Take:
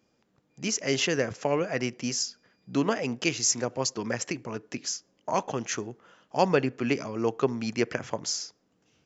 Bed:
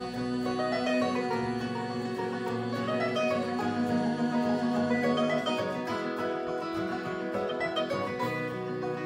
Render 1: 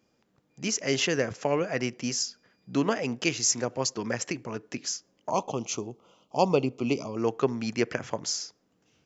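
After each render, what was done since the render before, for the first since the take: 5.30–7.17 s: Butterworth band-stop 1.7 kHz, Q 1.3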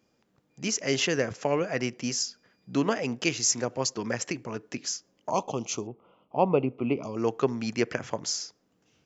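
5.87–7.03 s: low-pass 2.5 kHz 24 dB/octave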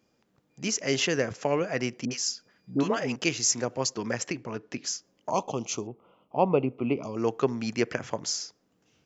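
2.05–3.16 s: phase dispersion highs, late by 60 ms, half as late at 820 Hz; 4.28–4.84 s: low-pass 5.5 kHz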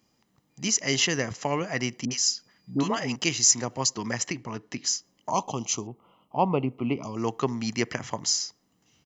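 treble shelf 4.3 kHz +7 dB; comb 1 ms, depth 42%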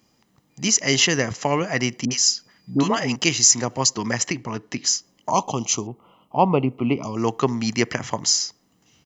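trim +6 dB; peak limiter -3 dBFS, peak gain reduction 3 dB

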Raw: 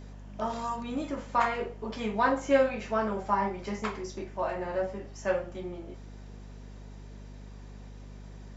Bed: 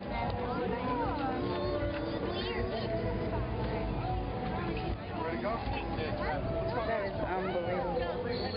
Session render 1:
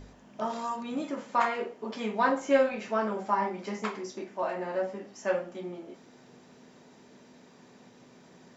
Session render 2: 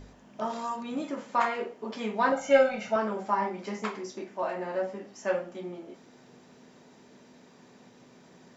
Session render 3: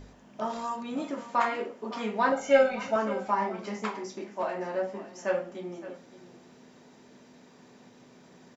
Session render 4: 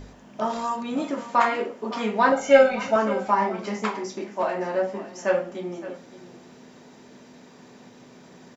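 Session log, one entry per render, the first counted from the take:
de-hum 50 Hz, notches 4
2.32–2.96 s: comb 1.4 ms, depth 94%
delay 564 ms -15.5 dB
trim +6 dB

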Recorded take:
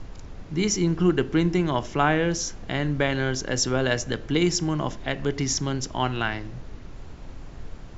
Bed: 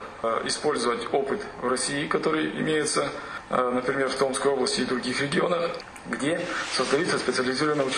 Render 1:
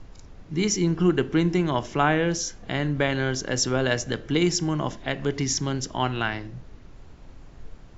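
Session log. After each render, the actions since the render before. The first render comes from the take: noise print and reduce 6 dB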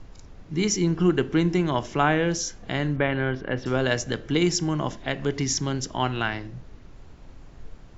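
2.96–3.66 s: low-pass 2.8 kHz 24 dB/octave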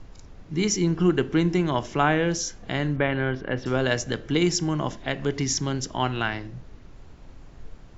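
no audible change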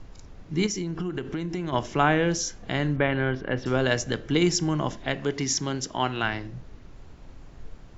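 0.66–1.73 s: compression 10:1, threshold -26 dBFS; 5.19–6.23 s: bass shelf 110 Hz -11 dB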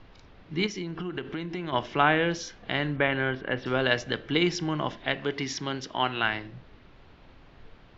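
low-pass 3.9 kHz 24 dB/octave; tilt EQ +2 dB/octave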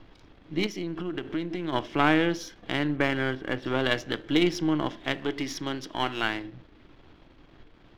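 partial rectifier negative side -7 dB; small resonant body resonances 310/3300 Hz, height 9 dB, ringing for 45 ms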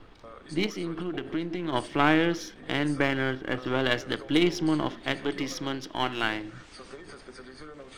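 add bed -21.5 dB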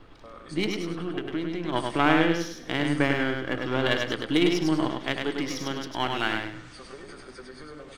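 feedback delay 101 ms, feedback 27%, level -4 dB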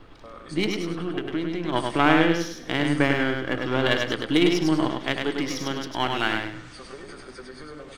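trim +2.5 dB

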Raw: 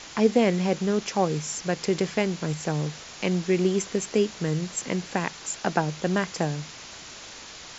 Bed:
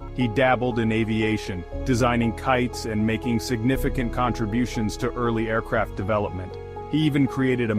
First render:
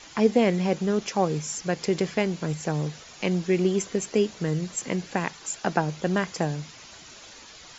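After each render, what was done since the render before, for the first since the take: noise reduction 8 dB, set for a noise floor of -43 dBFS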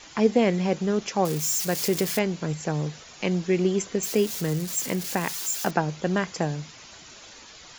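1.25–2.19 s: zero-crossing glitches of -22 dBFS; 4.03–5.71 s: zero-crossing glitches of -25.5 dBFS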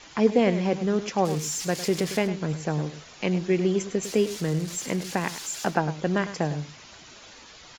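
distance through air 50 m; delay 103 ms -12.5 dB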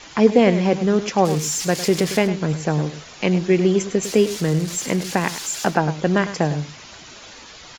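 trim +6.5 dB; peak limiter -2 dBFS, peak gain reduction 1.5 dB

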